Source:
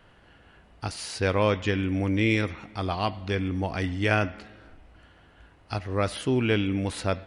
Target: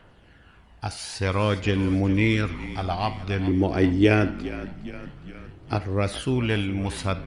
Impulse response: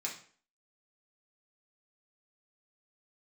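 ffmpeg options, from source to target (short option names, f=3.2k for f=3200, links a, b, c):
-filter_complex "[0:a]asettb=1/sr,asplit=3[a][b][c];[a]atrim=end=3.474[d];[b]atrim=start=3.47:end=5.76,asetpts=PTS-STARTPTS,afade=t=in:d=0.004:c=qsin,afade=t=out:st=2.286:d=0.004:c=qsin,equalizer=f=350:t=o:w=0.78:g=12[e];[c]atrim=start=5.756[f];[d][e]acrossfade=d=0.004:c1=hsin:c2=qsin[g];[g][f]acrossfade=d=0.004:c1=qsin:c2=hsin,aphaser=in_gain=1:out_gain=1:delay=1.4:decay=0.4:speed=0.52:type=triangular,asplit=7[h][i][j][k][l][m][n];[i]adelay=412,afreqshift=-43,volume=-15dB[o];[j]adelay=824,afreqshift=-86,volume=-19.3dB[p];[k]adelay=1236,afreqshift=-129,volume=-23.6dB[q];[l]adelay=1648,afreqshift=-172,volume=-27.9dB[r];[m]adelay=2060,afreqshift=-215,volume=-32.2dB[s];[n]adelay=2472,afreqshift=-258,volume=-36.5dB[t];[h][o][p][q][r][s][t]amix=inputs=7:normalize=0,asplit=2[u][v];[1:a]atrim=start_sample=2205,asetrate=83790,aresample=44100,adelay=52[w];[v][w]afir=irnorm=-1:irlink=0,volume=-11.5dB[x];[u][x]amix=inputs=2:normalize=0"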